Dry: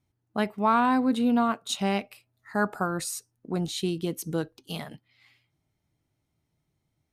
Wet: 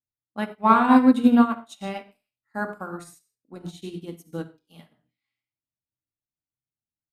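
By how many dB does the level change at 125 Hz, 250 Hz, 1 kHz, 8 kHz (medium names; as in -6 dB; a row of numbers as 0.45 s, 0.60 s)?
-4.5 dB, +6.0 dB, +3.5 dB, -13.5 dB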